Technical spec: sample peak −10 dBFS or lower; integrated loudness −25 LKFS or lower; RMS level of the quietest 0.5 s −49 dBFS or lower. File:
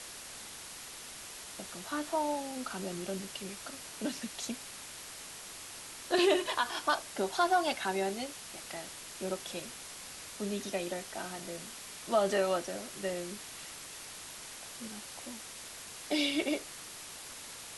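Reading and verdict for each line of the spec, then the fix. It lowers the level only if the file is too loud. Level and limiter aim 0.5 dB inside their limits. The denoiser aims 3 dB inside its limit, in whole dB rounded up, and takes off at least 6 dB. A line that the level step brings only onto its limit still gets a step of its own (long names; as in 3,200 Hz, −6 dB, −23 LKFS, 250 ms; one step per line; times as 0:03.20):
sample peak −16.0 dBFS: in spec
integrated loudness −36.0 LKFS: in spec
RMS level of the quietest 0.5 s −47 dBFS: out of spec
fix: broadband denoise 6 dB, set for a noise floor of −47 dBFS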